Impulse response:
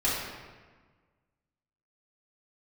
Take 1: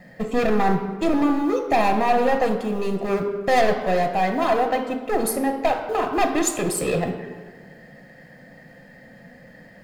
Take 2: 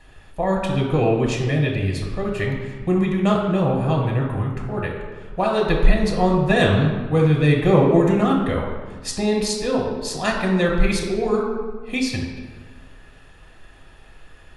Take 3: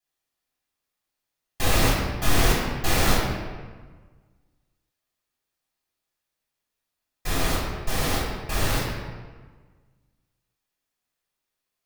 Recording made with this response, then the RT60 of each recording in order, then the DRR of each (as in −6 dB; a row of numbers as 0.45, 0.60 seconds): 3; 1.4, 1.4, 1.4 seconds; 5.5, 0.0, −8.5 decibels